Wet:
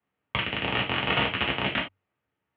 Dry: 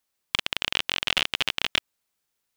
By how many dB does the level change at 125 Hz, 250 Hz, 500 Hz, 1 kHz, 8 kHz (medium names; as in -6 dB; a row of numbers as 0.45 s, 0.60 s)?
+12.0 dB, +10.5 dB, +8.0 dB, +6.0 dB, under -40 dB